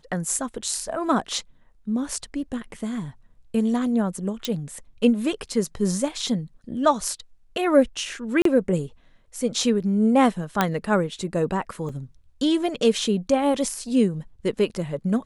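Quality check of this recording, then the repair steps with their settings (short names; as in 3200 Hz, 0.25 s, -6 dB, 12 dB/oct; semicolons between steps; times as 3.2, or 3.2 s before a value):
4.45 pop -11 dBFS
8.42–8.45 gap 33 ms
10.61 pop -5 dBFS
11.89 gap 4 ms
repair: de-click; interpolate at 8.42, 33 ms; interpolate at 11.89, 4 ms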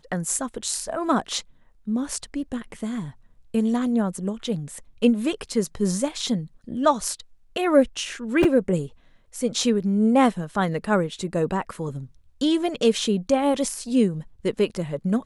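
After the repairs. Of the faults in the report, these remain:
none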